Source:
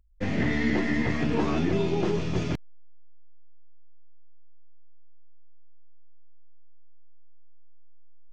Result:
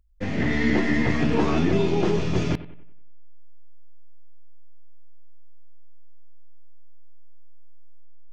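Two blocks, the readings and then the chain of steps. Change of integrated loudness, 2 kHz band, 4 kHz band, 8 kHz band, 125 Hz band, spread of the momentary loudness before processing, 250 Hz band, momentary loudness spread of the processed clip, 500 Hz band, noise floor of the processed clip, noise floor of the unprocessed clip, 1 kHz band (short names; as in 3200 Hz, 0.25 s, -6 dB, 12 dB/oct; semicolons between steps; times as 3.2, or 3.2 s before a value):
+3.5 dB, +3.5 dB, +3.5 dB, n/a, +3.5 dB, 5 LU, +3.5 dB, 6 LU, +4.0 dB, -35 dBFS, -40 dBFS, +4.0 dB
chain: AGC gain up to 4 dB; analogue delay 93 ms, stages 2048, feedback 42%, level -16 dB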